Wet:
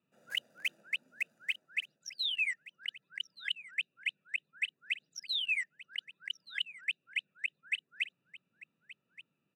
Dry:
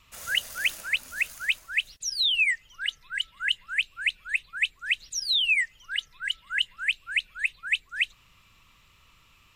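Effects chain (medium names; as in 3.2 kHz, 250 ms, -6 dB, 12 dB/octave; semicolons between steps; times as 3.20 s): local Wiener filter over 41 samples; steep high-pass 150 Hz 36 dB/octave; on a send: delay 1175 ms -18 dB; on the sum: trim -8 dB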